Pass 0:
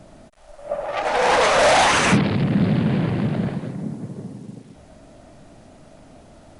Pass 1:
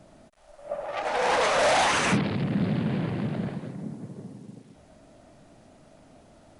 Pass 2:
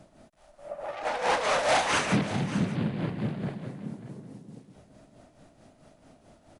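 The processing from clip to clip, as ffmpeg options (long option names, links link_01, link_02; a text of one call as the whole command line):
ffmpeg -i in.wav -af "lowshelf=frequency=78:gain=-5.5,volume=-6.5dB" out.wav
ffmpeg -i in.wav -af "tremolo=f=4.6:d=0.64,aecho=1:1:333|590:0.119|0.2" out.wav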